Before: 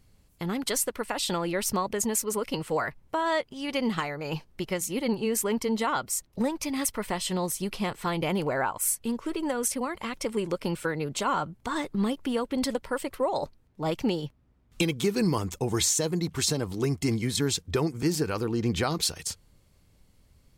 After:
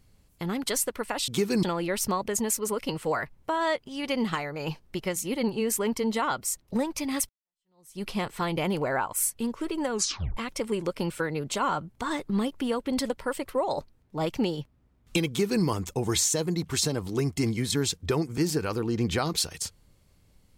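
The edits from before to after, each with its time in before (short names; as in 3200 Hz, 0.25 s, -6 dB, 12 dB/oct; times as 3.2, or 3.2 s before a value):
6.94–7.68 fade in exponential
9.56 tape stop 0.46 s
14.94–15.29 copy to 1.28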